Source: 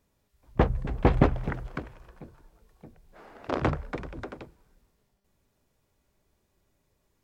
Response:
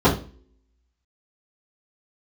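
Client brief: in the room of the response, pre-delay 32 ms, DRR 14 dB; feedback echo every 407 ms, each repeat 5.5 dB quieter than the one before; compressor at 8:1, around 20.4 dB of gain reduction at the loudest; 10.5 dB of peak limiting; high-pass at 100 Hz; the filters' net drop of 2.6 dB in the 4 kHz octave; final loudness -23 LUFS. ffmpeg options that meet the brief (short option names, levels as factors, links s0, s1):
-filter_complex "[0:a]highpass=100,equalizer=f=4000:t=o:g=-3.5,acompressor=threshold=0.0126:ratio=8,alimiter=level_in=2.99:limit=0.0631:level=0:latency=1,volume=0.335,aecho=1:1:407|814|1221|1628|2035|2442|2849:0.531|0.281|0.149|0.079|0.0419|0.0222|0.0118,asplit=2[s0][s1];[1:a]atrim=start_sample=2205,adelay=32[s2];[s1][s2]afir=irnorm=-1:irlink=0,volume=0.0158[s3];[s0][s3]amix=inputs=2:normalize=0,volume=17.8"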